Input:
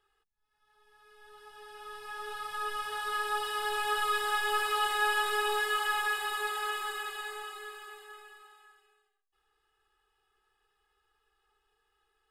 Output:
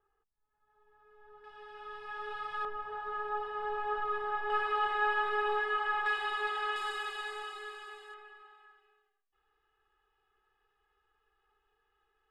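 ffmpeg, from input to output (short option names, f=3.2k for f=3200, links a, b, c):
-af "asetnsamples=n=441:p=0,asendcmd='1.44 lowpass f 2700;2.65 lowpass f 1100;4.5 lowpass f 1800;6.06 lowpass f 3300;6.76 lowpass f 5900;8.14 lowpass f 2600',lowpass=1.2k"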